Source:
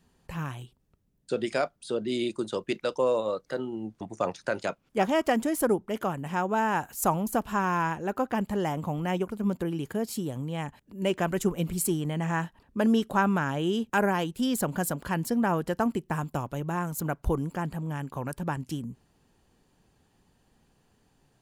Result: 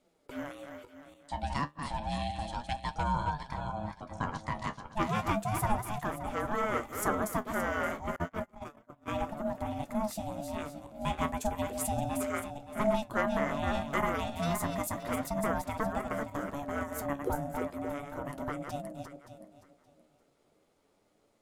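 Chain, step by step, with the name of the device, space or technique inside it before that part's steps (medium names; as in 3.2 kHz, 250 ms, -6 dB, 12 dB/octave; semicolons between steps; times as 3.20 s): backward echo that repeats 286 ms, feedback 44%, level -6 dB; alien voice (ring modulator 430 Hz; flange 0.32 Hz, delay 5.4 ms, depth 9 ms, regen +56%); 8.16–9.08 s: gate -32 dBFS, range -31 dB; trim +1 dB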